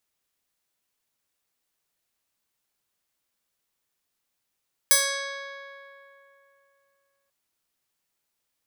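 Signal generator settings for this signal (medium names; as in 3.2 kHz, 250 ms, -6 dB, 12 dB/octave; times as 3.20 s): plucked string C#5, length 2.39 s, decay 3.01 s, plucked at 0.42, bright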